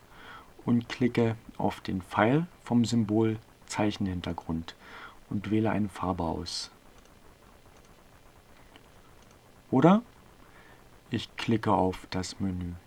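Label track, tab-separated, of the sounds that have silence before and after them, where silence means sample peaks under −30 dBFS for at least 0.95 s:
9.720000	9.990000	sound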